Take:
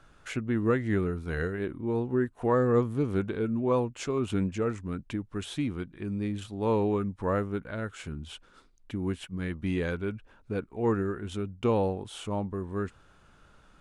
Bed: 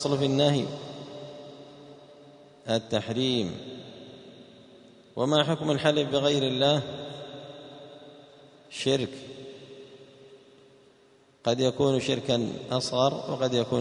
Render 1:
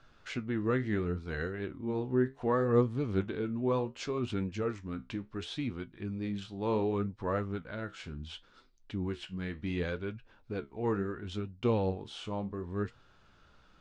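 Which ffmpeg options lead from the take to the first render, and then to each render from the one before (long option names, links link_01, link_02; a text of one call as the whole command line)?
ffmpeg -i in.wav -af "flanger=delay=7.9:depth=7.9:regen=62:speed=0.69:shape=sinusoidal,lowpass=frequency=4800:width_type=q:width=1.7" out.wav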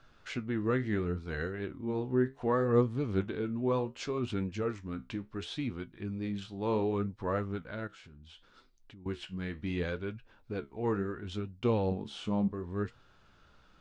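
ffmpeg -i in.wav -filter_complex "[0:a]asettb=1/sr,asplit=3[link_01][link_02][link_03];[link_01]atrim=end=7.874[link_04];[link_02]atrim=start=7.87:end=9.06,asetpts=PTS-STARTPTS,afade=type=in:duration=0.004:curve=qsin,afade=type=out:start_time=1.186:duration=0.004:curve=qsin,acompressor=threshold=-51dB:ratio=5:attack=3.2:release=140:knee=1:detection=peak[link_05];[link_03]atrim=start=9.056[link_06];[link_04][link_05]acrossfade=duration=0.004:curve1=hsin:curve2=qsin[link_07];[link_07][link_06]acrossfade=duration=0.004:curve1=qsin:curve2=hsin,asettb=1/sr,asplit=3[link_08][link_09][link_10];[link_08]atrim=end=11.914[link_11];[link_09]atrim=start=11.91:end=12.48,asetpts=PTS-STARTPTS,afade=type=in:duration=0.004:curve=qsin,afade=type=out:start_time=0.566:duration=0.004:curve=qsin,equalizer=frequency=210:width=1.9:gain=10[link_12];[link_10]atrim=start=12.476[link_13];[link_11][link_12]acrossfade=duration=0.004:curve1=hsin:curve2=qsin[link_14];[link_14][link_13]acrossfade=duration=0.004:curve1=qsin:curve2=hsin" out.wav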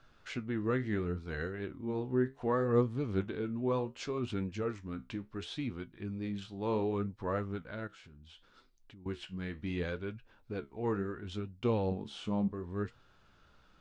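ffmpeg -i in.wav -af "volume=-2dB" out.wav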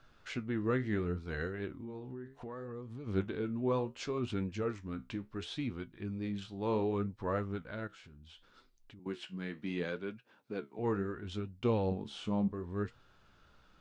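ffmpeg -i in.wav -filter_complex "[0:a]asplit=3[link_01][link_02][link_03];[link_01]afade=type=out:start_time=1.73:duration=0.02[link_04];[link_02]acompressor=threshold=-40dB:ratio=10:attack=3.2:release=140:knee=1:detection=peak,afade=type=in:start_time=1.73:duration=0.02,afade=type=out:start_time=3.06:duration=0.02[link_05];[link_03]afade=type=in:start_time=3.06:duration=0.02[link_06];[link_04][link_05][link_06]amix=inputs=3:normalize=0,asettb=1/sr,asplit=3[link_07][link_08][link_09];[link_07]atrim=end=8.994[link_10];[link_08]atrim=start=8.99:end=10.79,asetpts=PTS-STARTPTS,afade=type=in:duration=0.004:curve=qsin,afade=type=out:start_time=1.796:duration=0.004:curve=qsin,highpass=frequency=150:width=0.5412,highpass=frequency=150:width=1.3066[link_11];[link_09]atrim=start=10.786[link_12];[link_10][link_11]acrossfade=duration=0.004:curve1=hsin:curve2=qsin[link_13];[link_13][link_12]acrossfade=duration=0.004:curve1=qsin:curve2=hsin" out.wav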